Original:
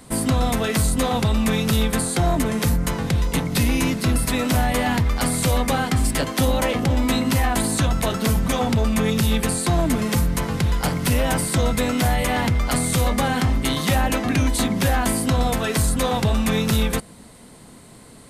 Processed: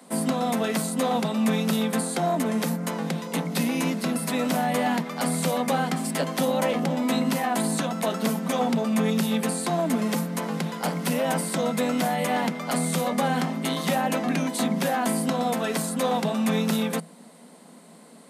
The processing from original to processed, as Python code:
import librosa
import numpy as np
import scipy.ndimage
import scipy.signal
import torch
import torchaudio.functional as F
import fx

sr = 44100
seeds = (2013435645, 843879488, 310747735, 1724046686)

y = scipy.signal.sosfilt(scipy.signal.cheby1(6, 6, 160.0, 'highpass', fs=sr, output='sos'), x)